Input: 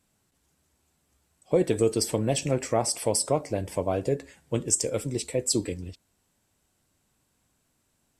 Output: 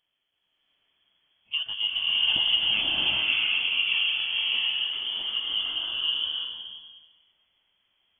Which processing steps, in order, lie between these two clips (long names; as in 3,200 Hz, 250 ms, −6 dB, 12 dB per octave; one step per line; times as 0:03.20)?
pitch glide at a constant tempo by −3 semitones starting unshifted
voice inversion scrambler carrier 3,300 Hz
slow-attack reverb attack 710 ms, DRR −8 dB
level −6 dB